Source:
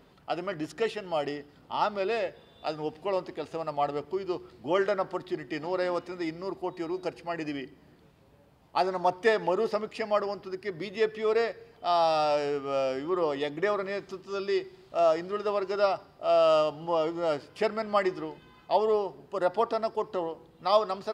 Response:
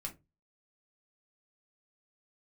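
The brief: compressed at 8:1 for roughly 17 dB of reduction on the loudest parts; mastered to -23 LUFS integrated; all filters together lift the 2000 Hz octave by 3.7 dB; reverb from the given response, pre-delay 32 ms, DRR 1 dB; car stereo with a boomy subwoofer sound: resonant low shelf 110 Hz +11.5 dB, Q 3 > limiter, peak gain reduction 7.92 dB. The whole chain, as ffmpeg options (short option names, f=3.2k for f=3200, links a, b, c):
-filter_complex "[0:a]equalizer=f=2k:t=o:g=4.5,acompressor=threshold=-36dB:ratio=8,asplit=2[a][b];[1:a]atrim=start_sample=2205,adelay=32[c];[b][c]afir=irnorm=-1:irlink=0,volume=0.5dB[d];[a][d]amix=inputs=2:normalize=0,lowshelf=f=110:t=q:w=3:g=11.5,volume=17dB,alimiter=limit=-12dB:level=0:latency=1"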